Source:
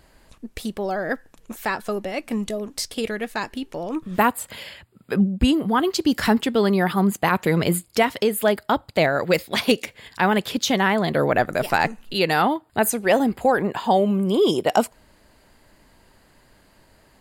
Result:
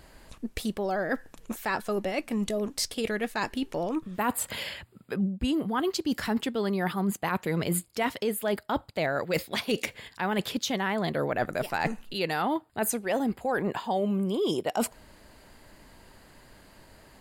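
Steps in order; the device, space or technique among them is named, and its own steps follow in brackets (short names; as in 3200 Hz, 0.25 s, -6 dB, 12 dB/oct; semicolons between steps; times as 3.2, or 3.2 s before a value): compression on the reversed sound (reverse; compressor 5:1, threshold -28 dBFS, peak gain reduction 14.5 dB; reverse); gain +2 dB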